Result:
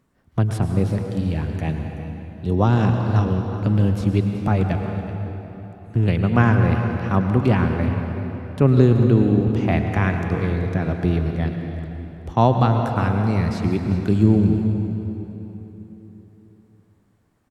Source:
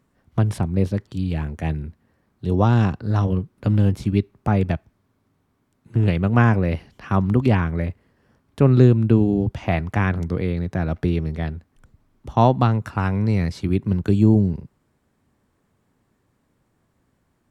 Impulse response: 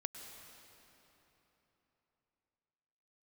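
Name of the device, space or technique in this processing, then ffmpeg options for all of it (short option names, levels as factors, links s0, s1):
cave: -filter_complex "[0:a]aecho=1:1:379:0.178[s0];[1:a]atrim=start_sample=2205[s1];[s0][s1]afir=irnorm=-1:irlink=0,volume=1.33"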